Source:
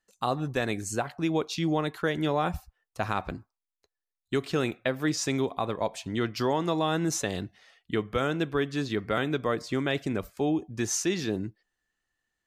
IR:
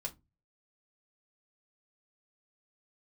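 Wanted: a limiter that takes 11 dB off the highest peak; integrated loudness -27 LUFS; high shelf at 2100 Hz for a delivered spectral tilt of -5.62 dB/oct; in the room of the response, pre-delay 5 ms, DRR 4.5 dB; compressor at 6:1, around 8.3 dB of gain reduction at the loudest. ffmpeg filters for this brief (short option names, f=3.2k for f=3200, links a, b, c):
-filter_complex "[0:a]highshelf=f=2.1k:g=-8,acompressor=threshold=-32dB:ratio=6,alimiter=level_in=5dB:limit=-24dB:level=0:latency=1,volume=-5dB,asplit=2[a][b];[1:a]atrim=start_sample=2205,adelay=5[c];[b][c]afir=irnorm=-1:irlink=0,volume=-3.5dB[d];[a][d]amix=inputs=2:normalize=0,volume=11dB"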